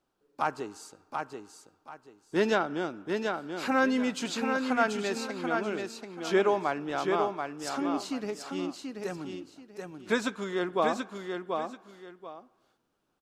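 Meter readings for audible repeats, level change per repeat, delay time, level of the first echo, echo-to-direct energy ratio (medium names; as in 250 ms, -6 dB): 2, -12.0 dB, 734 ms, -5.0 dB, -4.5 dB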